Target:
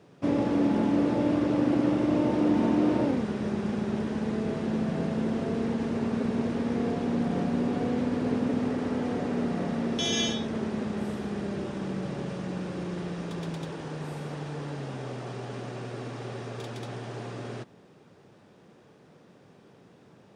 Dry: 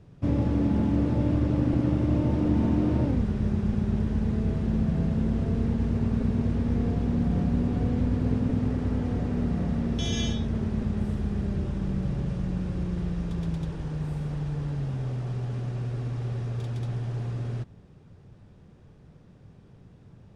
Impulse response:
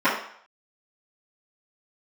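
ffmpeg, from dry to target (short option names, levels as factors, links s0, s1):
-af "highpass=300,volume=1.88"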